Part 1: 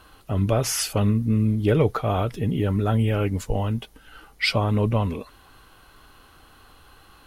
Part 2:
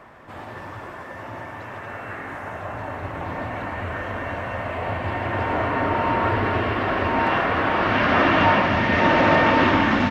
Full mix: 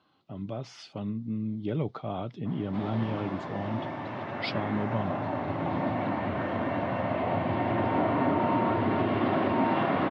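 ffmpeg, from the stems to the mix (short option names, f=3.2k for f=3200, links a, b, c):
-filter_complex "[0:a]volume=-10.5dB[a];[1:a]equalizer=f=1.2k:t=o:w=2:g=-3.5,acompressor=threshold=-24dB:ratio=6,adynamicequalizer=threshold=0.0112:dfrequency=2300:dqfactor=0.7:tfrequency=2300:tqfactor=0.7:attack=5:release=100:ratio=0.375:range=2:mode=cutabove:tftype=highshelf,adelay=2450,volume=0.5dB[b];[a][b]amix=inputs=2:normalize=0,equalizer=f=2k:w=1:g=-14.5,dynaudnorm=f=390:g=9:m=5.5dB,highpass=f=130:w=0.5412,highpass=f=130:w=1.3066,equalizer=f=460:t=q:w=4:g=-8,equalizer=f=2.1k:t=q:w=4:g=8,equalizer=f=3.5k:t=q:w=4:g=3,lowpass=f=4.2k:w=0.5412,lowpass=f=4.2k:w=1.3066"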